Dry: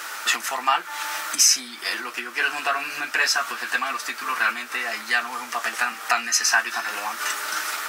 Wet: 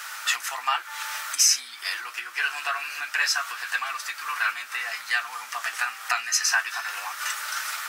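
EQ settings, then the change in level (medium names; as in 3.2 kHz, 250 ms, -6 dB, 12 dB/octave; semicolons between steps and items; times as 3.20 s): high-pass 970 Hz 12 dB/octave; -2.5 dB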